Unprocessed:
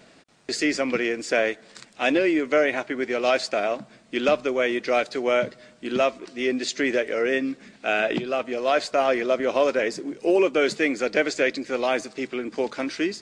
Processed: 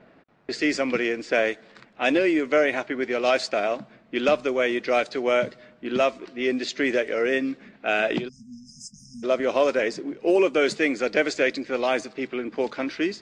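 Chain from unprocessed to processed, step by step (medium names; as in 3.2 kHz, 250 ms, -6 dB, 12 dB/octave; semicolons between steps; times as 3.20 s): level-controlled noise filter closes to 1.7 kHz, open at -17 dBFS; spectral selection erased 8.28–9.24 s, 240–4900 Hz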